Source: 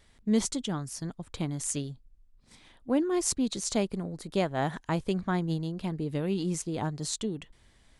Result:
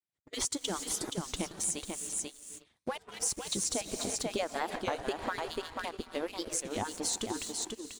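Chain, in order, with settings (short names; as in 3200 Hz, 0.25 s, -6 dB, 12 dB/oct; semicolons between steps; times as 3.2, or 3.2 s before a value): median-filter separation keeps percussive; Chebyshev low-pass 10000 Hz, order 2; high shelf 9300 Hz +4.5 dB; non-linear reverb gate 0.39 s rising, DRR 9.5 dB; expander -56 dBFS; sample leveller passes 2; echo 0.49 s -7 dB; compressor 10:1, threshold -26 dBFS, peak gain reduction 9.5 dB; record warp 33 1/3 rpm, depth 160 cents; gain -3 dB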